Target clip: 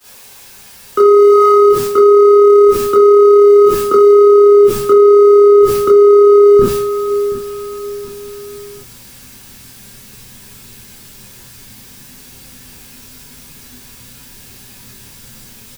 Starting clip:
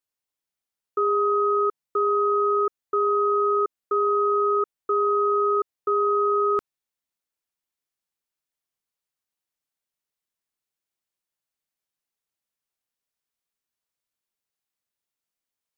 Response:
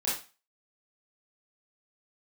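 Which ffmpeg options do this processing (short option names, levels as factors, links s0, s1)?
-filter_complex "[0:a]aeval=exprs='val(0)+0.5*0.02*sgn(val(0))':c=same,agate=range=0.0224:threshold=0.0316:ratio=3:detection=peak,asubboost=boost=8:cutoff=220,acrossover=split=150|450[s0][s1][s2];[s2]acompressor=threshold=0.0224:ratio=10[s3];[s0][s1][s3]amix=inputs=3:normalize=0,flanger=delay=9.6:depth=2.5:regen=-40:speed=0.19:shape=sinusoidal,aecho=1:1:727|1454|2181:0.1|0.038|0.0144[s4];[1:a]atrim=start_sample=2205,atrim=end_sample=3969[s5];[s4][s5]afir=irnorm=-1:irlink=0,alimiter=level_in=12.6:limit=0.891:release=50:level=0:latency=1,volume=0.891"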